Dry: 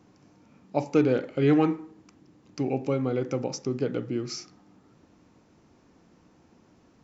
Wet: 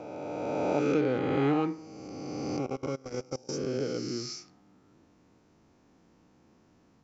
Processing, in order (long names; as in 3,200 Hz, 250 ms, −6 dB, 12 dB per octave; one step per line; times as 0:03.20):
peak hold with a rise ahead of every peak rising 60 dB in 2.67 s
0:02.66–0:03.49: output level in coarse steps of 24 dB
level −7.5 dB